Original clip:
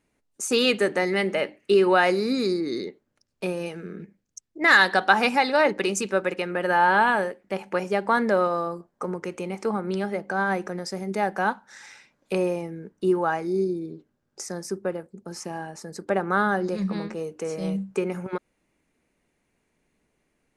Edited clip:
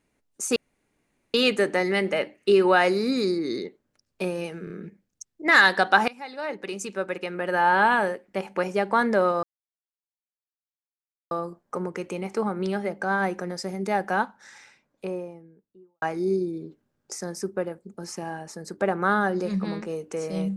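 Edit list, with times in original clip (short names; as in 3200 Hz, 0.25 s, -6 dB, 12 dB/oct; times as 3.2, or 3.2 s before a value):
0.56 insert room tone 0.78 s
3.86 stutter 0.03 s, 3 plays
5.24–7.04 fade in, from -24 dB
8.59 insert silence 1.88 s
11.35–13.3 studio fade out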